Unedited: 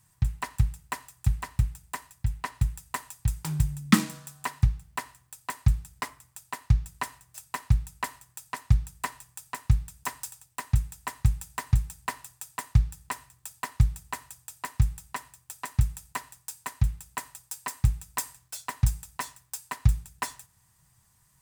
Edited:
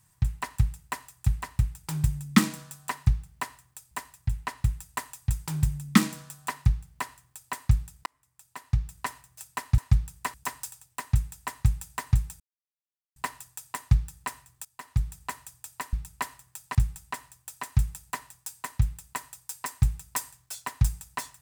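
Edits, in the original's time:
0:03.44–0:05.47: duplicate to 0:01.88
0:06.03–0:07.05: fade in
0:07.75–0:08.57: move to 0:14.77
0:09.13–0:09.94: remove
0:12.00: splice in silence 0.76 s
0:13.49–0:14.10: fade in, from −16.5 dB

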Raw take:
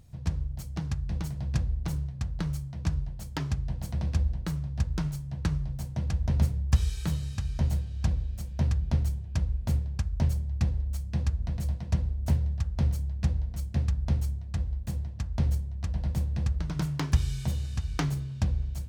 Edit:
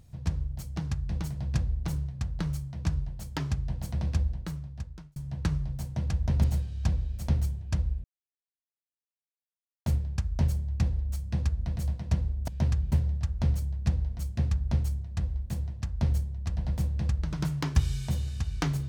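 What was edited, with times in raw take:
0:04.11–0:05.16: fade out
0:06.44–0:07.63: remove
0:08.47–0:08.91: move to 0:12.29
0:09.67: splice in silence 1.82 s

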